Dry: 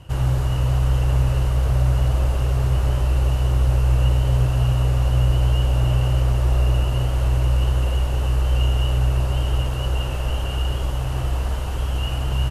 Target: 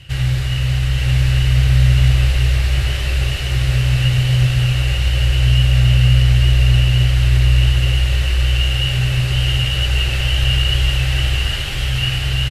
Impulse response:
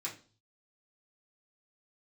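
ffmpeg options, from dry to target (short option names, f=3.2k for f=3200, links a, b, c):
-filter_complex "[0:a]equalizer=f=125:t=o:w=1:g=5,equalizer=f=250:t=o:w=1:g=-7,equalizer=f=500:t=o:w=1:g=-3,equalizer=f=1k:t=o:w=1:g=-11,equalizer=f=2k:t=o:w=1:g=12,equalizer=f=4k:t=o:w=1:g=10,aecho=1:1:883:0.708,asplit=2[a][b];[1:a]atrim=start_sample=2205[c];[b][c]afir=irnorm=-1:irlink=0,volume=-8.5dB[d];[a][d]amix=inputs=2:normalize=0,dynaudnorm=f=370:g=9:m=3dB"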